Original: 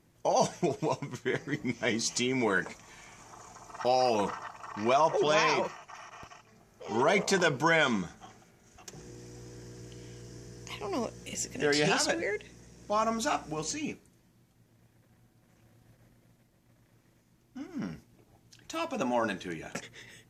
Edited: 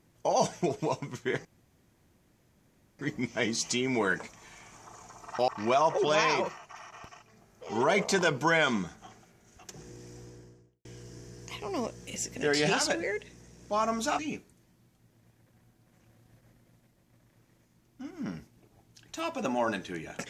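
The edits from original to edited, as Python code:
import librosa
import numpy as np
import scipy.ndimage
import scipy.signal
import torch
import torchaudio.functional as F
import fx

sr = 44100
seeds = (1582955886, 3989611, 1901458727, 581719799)

y = fx.studio_fade_out(x, sr, start_s=9.31, length_s=0.73)
y = fx.edit(y, sr, fx.insert_room_tone(at_s=1.45, length_s=1.54),
    fx.cut(start_s=3.94, length_s=0.73),
    fx.cut(start_s=13.38, length_s=0.37), tone=tone)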